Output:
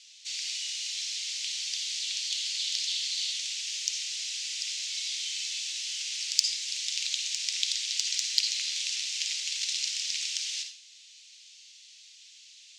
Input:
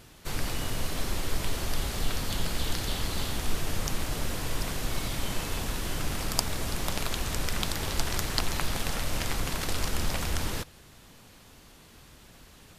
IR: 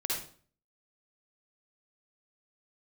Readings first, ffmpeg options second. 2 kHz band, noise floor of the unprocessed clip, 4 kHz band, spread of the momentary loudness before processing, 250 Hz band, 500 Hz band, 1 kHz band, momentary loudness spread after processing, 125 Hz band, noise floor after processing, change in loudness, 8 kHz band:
-3.0 dB, -54 dBFS, +7.0 dB, 3 LU, under -40 dB, under -40 dB, under -30 dB, 6 LU, under -40 dB, -53 dBFS, +2.5 dB, +5.0 dB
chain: -filter_complex "[0:a]asuperpass=centerf=3600:order=8:qfactor=0.69,asplit=2[a][b];[1:a]atrim=start_sample=2205[c];[b][c]afir=irnorm=-1:irlink=0,volume=-7dB[d];[a][d]amix=inputs=2:normalize=0,aexciter=amount=8.6:drive=4.8:freq=2.4k,volume=-15.5dB"

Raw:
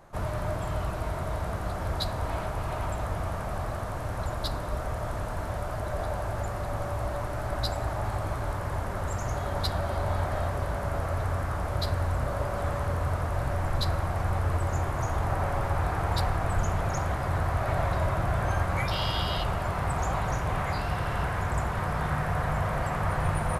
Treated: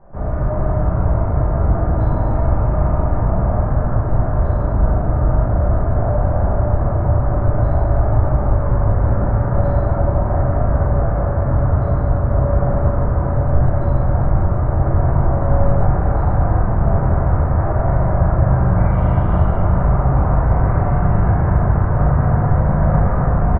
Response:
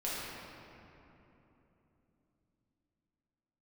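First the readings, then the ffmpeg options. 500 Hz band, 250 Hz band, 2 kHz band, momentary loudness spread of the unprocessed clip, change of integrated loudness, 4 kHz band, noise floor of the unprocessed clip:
+11.0 dB, +15.0 dB, +1.0 dB, 5 LU, +12.5 dB, under -20 dB, -33 dBFS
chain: -filter_complex "[0:a]lowpass=f=1.6k:w=0.5412,lowpass=f=1.6k:w=1.3066,lowshelf=f=410:g=11,alimiter=limit=-15dB:level=0:latency=1:release=29,asplit=2[a][b];[b]adelay=39,volume=-6dB[c];[a][c]amix=inputs=2:normalize=0[d];[1:a]atrim=start_sample=2205[e];[d][e]afir=irnorm=-1:irlink=0"

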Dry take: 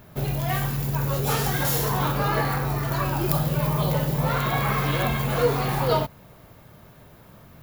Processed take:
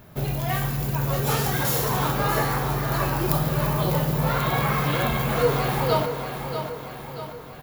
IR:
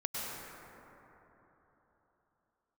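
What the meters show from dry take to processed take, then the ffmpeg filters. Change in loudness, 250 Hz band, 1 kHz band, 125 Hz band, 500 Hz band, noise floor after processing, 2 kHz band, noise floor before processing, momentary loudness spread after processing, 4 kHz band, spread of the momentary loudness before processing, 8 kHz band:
0.0 dB, +0.5 dB, +1.0 dB, 0.0 dB, +1.0 dB, -39 dBFS, +1.0 dB, -50 dBFS, 9 LU, +1.0 dB, 3 LU, +1.0 dB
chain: -filter_complex "[0:a]aecho=1:1:635|1270|1905|2540|3175|3810:0.376|0.199|0.106|0.056|0.0297|0.0157,asplit=2[a][b];[1:a]atrim=start_sample=2205[c];[b][c]afir=irnorm=-1:irlink=0,volume=-15.5dB[d];[a][d]amix=inputs=2:normalize=0,volume=-1dB"

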